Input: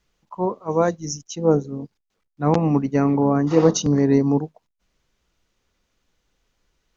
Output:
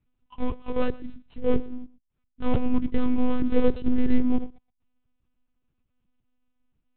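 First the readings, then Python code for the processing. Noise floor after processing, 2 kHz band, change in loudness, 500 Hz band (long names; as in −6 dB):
−77 dBFS, −5.5 dB, −7.5 dB, −9.5 dB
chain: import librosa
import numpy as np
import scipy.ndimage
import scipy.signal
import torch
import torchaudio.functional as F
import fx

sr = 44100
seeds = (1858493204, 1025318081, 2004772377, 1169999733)

p1 = scipy.signal.medfilt(x, 25)
p2 = p1 + fx.echo_single(p1, sr, ms=120, db=-19.5, dry=0)
p3 = fx.dynamic_eq(p2, sr, hz=440.0, q=1.1, threshold_db=-28.0, ratio=4.0, max_db=5)
p4 = fx.lpc_monotone(p3, sr, seeds[0], pitch_hz=250.0, order=8)
y = fx.peak_eq(p4, sr, hz=590.0, db=-13.0, octaves=2.1)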